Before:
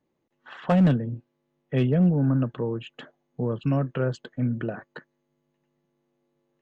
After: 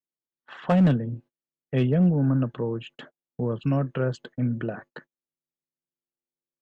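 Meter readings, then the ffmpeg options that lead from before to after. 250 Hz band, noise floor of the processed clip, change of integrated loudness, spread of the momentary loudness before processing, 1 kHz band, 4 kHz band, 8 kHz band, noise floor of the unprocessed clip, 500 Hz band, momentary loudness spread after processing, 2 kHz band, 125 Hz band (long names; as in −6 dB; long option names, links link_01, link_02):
0.0 dB, below −85 dBFS, 0.0 dB, 15 LU, 0.0 dB, 0.0 dB, can't be measured, −76 dBFS, 0.0 dB, 15 LU, 0.0 dB, 0.0 dB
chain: -af "agate=range=-29dB:threshold=-46dB:ratio=16:detection=peak"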